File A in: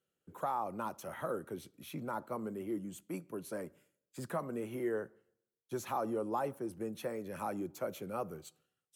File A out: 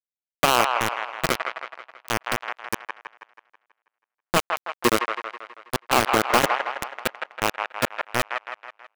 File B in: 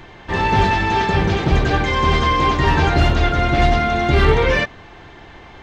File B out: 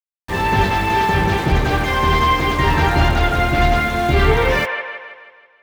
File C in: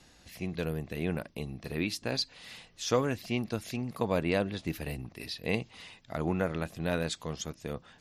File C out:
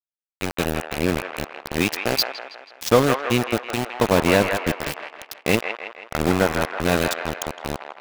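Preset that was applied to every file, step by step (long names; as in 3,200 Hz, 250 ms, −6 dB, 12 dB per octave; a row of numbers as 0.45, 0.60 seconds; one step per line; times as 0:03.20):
centre clipping without the shift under −29 dBFS
delay with a band-pass on its return 162 ms, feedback 50%, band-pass 1,300 Hz, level −3 dB
normalise the peak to −3 dBFS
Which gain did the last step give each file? +19.0, −0.5, +11.5 decibels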